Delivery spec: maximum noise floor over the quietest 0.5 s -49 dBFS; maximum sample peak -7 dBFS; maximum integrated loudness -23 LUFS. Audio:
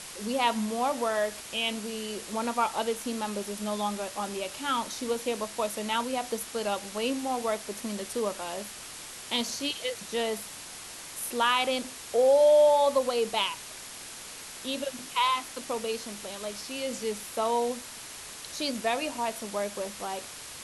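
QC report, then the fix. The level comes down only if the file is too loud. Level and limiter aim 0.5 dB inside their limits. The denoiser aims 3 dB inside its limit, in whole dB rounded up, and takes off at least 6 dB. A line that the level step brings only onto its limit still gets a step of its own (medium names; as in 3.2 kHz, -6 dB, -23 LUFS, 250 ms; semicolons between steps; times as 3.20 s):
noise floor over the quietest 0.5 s -43 dBFS: fail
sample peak -13.0 dBFS: pass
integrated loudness -29.5 LUFS: pass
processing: noise reduction 9 dB, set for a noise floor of -43 dBFS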